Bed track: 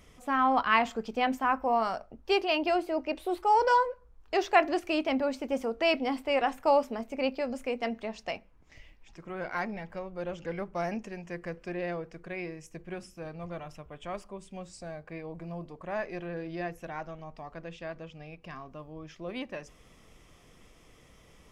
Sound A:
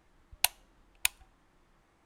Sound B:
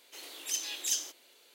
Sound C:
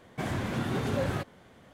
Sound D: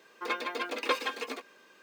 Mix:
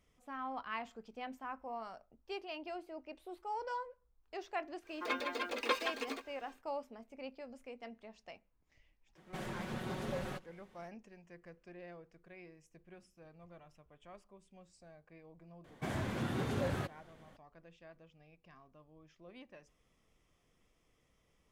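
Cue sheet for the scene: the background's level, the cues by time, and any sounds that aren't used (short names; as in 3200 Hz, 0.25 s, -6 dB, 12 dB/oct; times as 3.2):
bed track -17 dB
4.8 add D -4.5 dB, fades 0.10 s
9.15 add C -8.5 dB + minimum comb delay 5.4 ms
15.64 add C -6 dB
not used: A, B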